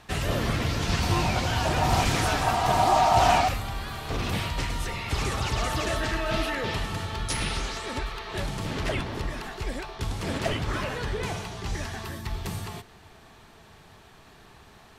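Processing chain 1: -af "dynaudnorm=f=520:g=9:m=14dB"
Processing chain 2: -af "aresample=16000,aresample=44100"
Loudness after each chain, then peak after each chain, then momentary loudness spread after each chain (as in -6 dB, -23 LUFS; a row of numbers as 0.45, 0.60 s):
-19.5, -27.5 LUFS; -1.5, -9.0 dBFS; 10, 13 LU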